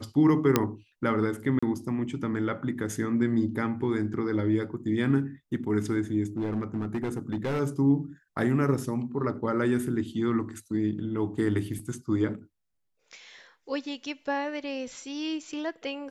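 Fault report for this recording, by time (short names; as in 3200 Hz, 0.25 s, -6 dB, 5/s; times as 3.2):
0.56 pop -6 dBFS
1.59–1.62 gap 35 ms
6.37–7.61 clipped -25 dBFS
11.79 gap 4.8 ms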